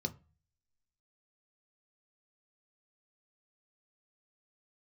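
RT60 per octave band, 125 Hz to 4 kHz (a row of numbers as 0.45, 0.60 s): 0.60, 0.40, 0.30, 0.35, 0.35, 0.25 s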